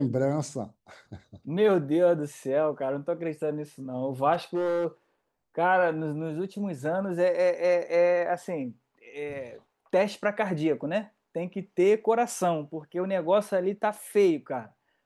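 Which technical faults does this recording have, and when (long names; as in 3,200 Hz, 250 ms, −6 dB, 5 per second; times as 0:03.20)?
0:04.33–0:04.86: clipping −23 dBFS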